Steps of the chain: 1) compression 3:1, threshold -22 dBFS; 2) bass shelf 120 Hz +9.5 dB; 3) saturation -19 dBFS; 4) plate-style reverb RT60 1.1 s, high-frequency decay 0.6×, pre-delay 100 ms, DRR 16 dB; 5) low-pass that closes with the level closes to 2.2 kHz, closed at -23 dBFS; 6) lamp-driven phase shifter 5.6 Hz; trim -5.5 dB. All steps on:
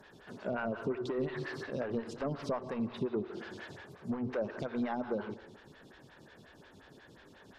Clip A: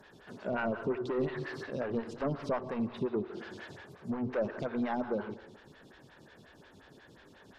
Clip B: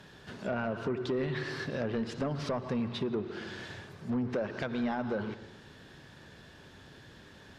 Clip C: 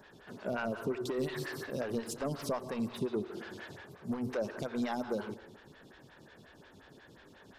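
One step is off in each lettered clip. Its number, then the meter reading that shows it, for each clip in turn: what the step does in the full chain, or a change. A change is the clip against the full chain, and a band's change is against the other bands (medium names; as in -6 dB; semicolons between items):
1, momentary loudness spread change -8 LU; 6, 4 kHz band +4.5 dB; 5, 4 kHz band +4.0 dB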